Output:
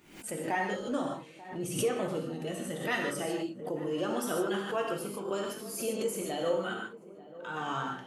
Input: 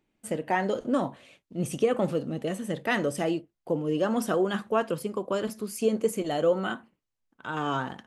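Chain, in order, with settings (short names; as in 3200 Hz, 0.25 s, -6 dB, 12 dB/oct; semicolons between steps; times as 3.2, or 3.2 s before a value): bin magnitudes rounded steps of 15 dB; tilt +1.5 dB/oct; on a send: darkening echo 0.888 s, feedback 64%, low-pass 900 Hz, level -16 dB; on the sum: non-linear reverb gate 0.18 s flat, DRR -0.5 dB; backwards sustainer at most 93 dB/s; gain -7 dB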